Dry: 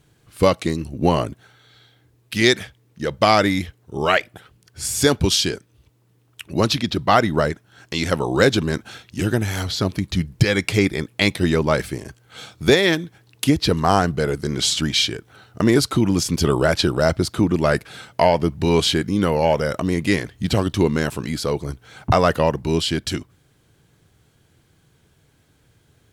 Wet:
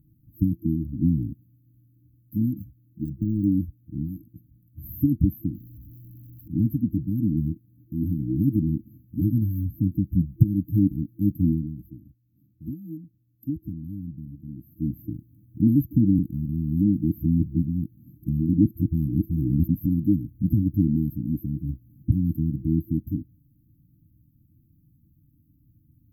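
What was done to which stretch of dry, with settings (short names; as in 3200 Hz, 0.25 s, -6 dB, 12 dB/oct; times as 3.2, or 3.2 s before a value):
2.59–3.52 de-esser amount 95%
5.54–6.48 zero-crossing step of -39.5 dBFS
11.49–14.94 dip -12 dB, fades 0.34 s quadratic
16.19–19.86 reverse
whole clip: FFT band-reject 330–12000 Hz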